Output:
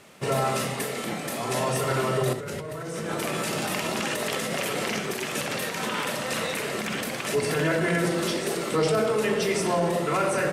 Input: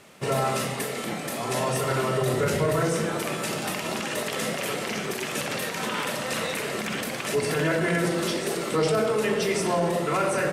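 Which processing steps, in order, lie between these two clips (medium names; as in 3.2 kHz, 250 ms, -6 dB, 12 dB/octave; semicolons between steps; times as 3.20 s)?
2.33–4.99 s: compressor with a negative ratio -30 dBFS, ratio -1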